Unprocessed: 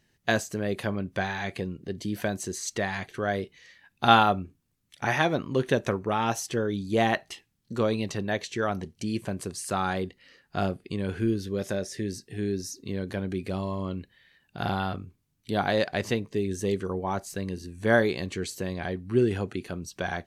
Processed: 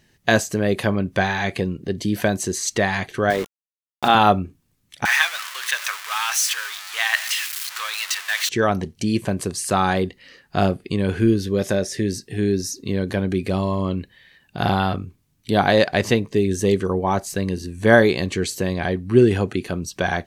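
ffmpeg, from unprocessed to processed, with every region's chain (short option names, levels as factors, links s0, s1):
-filter_complex "[0:a]asettb=1/sr,asplit=3[s0][s1][s2];[s0]atrim=end=3.304[s3];[s1]atrim=start=3.3:end=4.15,asetpts=PTS-STARTPTS,afade=t=in:d=0.004:c=qsin,afade=t=out:st=0.846:d=0.004:c=qsin,aeval=exprs='val(0)+0.0158*(sin(2*PI*50*n/s)+sin(2*PI*2*50*n/s)/2+sin(2*PI*3*50*n/s)/3+sin(2*PI*4*50*n/s)/4+sin(2*PI*5*50*n/s)/5)':c=same,highpass=230,lowpass=4700,aeval=exprs='val(0)*gte(abs(val(0)),0.015)':c=same[s4];[s2]atrim=start=4.146[s5];[s3][s4]acrossfade=d=0.004:c1=hsin:c2=qsin[s6];[s6][s5]acrossfade=d=0.004:c1=qsin:c2=hsin,asettb=1/sr,asplit=3[s7][s8][s9];[s7]atrim=end=5.054[s10];[s8]atrim=start=5.05:end=8.49,asetpts=PTS-STARTPTS,afade=t=in:d=0.004:c=qsin,afade=t=out:st=3.436:d=0.004:c=qsin,aeval=exprs='val(0)+0.5*0.0398*sgn(val(0))':c=same,highpass=f=1300:w=0.5412,highpass=f=1300:w=1.3066[s11];[s9]atrim=start=8.486[s12];[s10][s11]acrossfade=d=0.004:c1=hsin:c2=qsin[s13];[s13][s12]acrossfade=d=0.004:c1=qsin:c2=hsin,bandreject=f=1400:w=25,alimiter=level_in=3.16:limit=0.891:release=50:level=0:latency=1,volume=0.891"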